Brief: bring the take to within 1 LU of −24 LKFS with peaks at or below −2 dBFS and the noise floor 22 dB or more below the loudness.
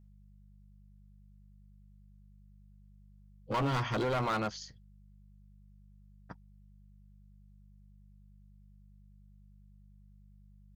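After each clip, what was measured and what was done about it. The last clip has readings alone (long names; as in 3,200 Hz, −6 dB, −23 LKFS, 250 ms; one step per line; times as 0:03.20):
share of clipped samples 1.3%; peaks flattened at −27.5 dBFS; mains hum 50 Hz; hum harmonics up to 200 Hz; level of the hum −56 dBFS; integrated loudness −33.0 LKFS; sample peak −27.5 dBFS; target loudness −24.0 LKFS
→ clipped peaks rebuilt −27.5 dBFS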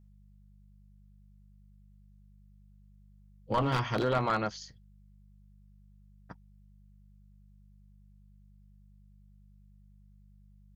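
share of clipped samples 0.0%; mains hum 50 Hz; hum harmonics up to 200 Hz; level of the hum −56 dBFS
→ hum removal 50 Hz, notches 4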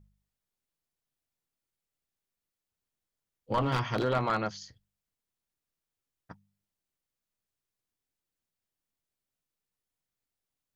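mains hum none found; integrated loudness −30.5 LKFS; sample peak −18.0 dBFS; target loudness −24.0 LKFS
→ level +6.5 dB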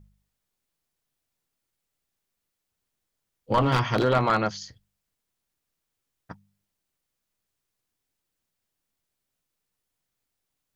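integrated loudness −24.0 LKFS; sample peak −11.5 dBFS; background noise floor −83 dBFS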